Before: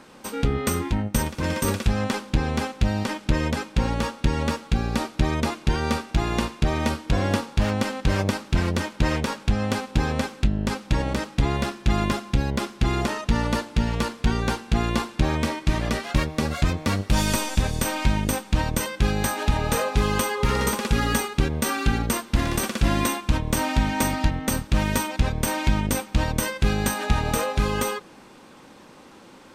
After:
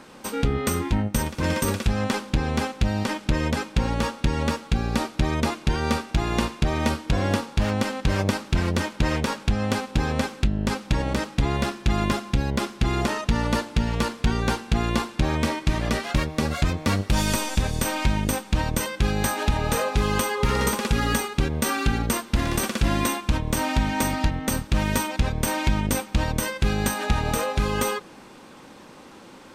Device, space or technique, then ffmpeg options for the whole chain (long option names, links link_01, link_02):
clipper into limiter: -af "asoftclip=type=hard:threshold=-8.5dB,alimiter=limit=-12dB:level=0:latency=1:release=360,volume=2dB"